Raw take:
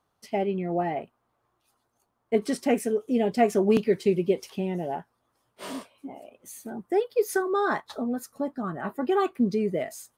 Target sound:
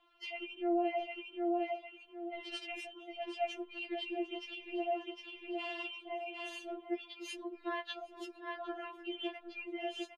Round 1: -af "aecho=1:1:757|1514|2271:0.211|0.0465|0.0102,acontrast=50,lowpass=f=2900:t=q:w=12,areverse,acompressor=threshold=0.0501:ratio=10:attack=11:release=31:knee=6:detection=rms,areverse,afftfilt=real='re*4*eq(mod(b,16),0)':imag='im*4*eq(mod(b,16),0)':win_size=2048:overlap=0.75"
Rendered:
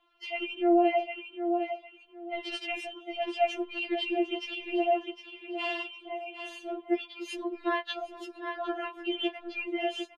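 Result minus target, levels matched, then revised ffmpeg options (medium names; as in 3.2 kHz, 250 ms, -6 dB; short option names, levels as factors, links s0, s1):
compression: peak gain reduction -9.5 dB
-af "aecho=1:1:757|1514|2271:0.211|0.0465|0.0102,acontrast=50,lowpass=f=2900:t=q:w=12,areverse,acompressor=threshold=0.015:ratio=10:attack=11:release=31:knee=6:detection=rms,areverse,afftfilt=real='re*4*eq(mod(b,16),0)':imag='im*4*eq(mod(b,16),0)':win_size=2048:overlap=0.75"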